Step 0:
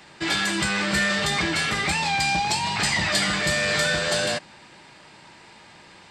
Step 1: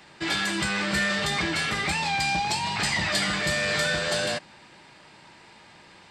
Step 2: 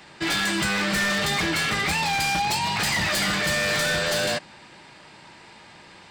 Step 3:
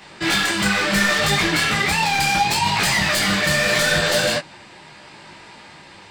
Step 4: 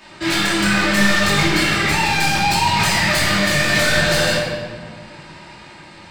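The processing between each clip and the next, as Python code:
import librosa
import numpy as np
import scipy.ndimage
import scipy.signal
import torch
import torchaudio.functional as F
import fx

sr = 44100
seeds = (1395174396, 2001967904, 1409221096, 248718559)

y1 = fx.peak_eq(x, sr, hz=7300.0, db=-2.0, octaves=0.77)
y1 = y1 * librosa.db_to_amplitude(-2.5)
y2 = 10.0 ** (-22.0 / 20.0) * (np.abs((y1 / 10.0 ** (-22.0 / 20.0) + 3.0) % 4.0 - 2.0) - 1.0)
y2 = y2 * librosa.db_to_amplitude(3.5)
y3 = fx.detune_double(y2, sr, cents=26)
y3 = y3 * librosa.db_to_amplitude(8.5)
y4 = fx.room_shoebox(y3, sr, seeds[0], volume_m3=1800.0, walls='mixed', distance_m=2.7)
y4 = y4 * librosa.db_to_amplitude(-2.5)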